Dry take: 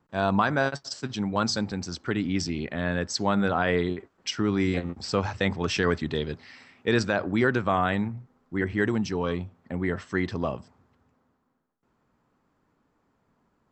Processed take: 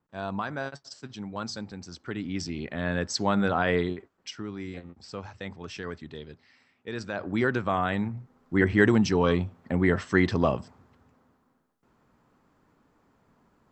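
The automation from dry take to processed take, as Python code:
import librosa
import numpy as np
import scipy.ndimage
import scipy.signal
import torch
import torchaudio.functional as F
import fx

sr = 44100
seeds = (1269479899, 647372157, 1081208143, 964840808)

y = fx.gain(x, sr, db=fx.line((1.81, -9.0), (2.99, -0.5), (3.79, -0.5), (4.53, -12.5), (6.94, -12.5), (7.35, -2.5), (7.9, -2.5), (8.57, 5.0)))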